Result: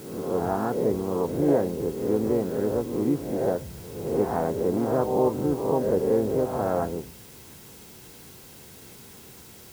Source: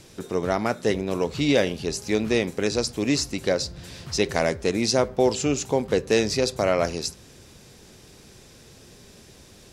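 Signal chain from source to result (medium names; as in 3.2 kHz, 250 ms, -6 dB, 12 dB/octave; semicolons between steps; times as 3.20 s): reverse spectral sustain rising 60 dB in 0.89 s; inverse Chebyshev low-pass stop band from 3 kHz, stop band 50 dB; in parallel at -6 dB: word length cut 6-bit, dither triangular; on the sum: comb of notches 600 Hz; harmony voices +3 st -7 dB; trim -6 dB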